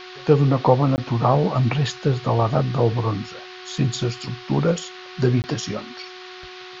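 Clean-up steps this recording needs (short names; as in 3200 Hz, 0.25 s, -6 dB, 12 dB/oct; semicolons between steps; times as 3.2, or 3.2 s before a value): de-hum 367.3 Hz, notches 5; interpolate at 0.96/5.42, 19 ms; noise print and reduce 27 dB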